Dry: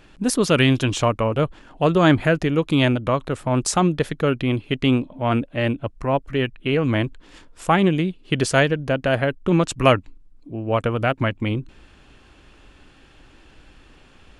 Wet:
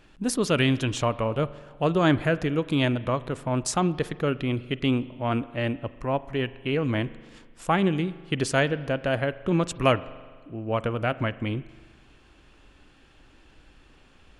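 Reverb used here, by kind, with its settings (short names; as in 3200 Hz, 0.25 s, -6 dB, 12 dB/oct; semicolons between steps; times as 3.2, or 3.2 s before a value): spring tank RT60 1.6 s, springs 41 ms, chirp 30 ms, DRR 16.5 dB; gain -5.5 dB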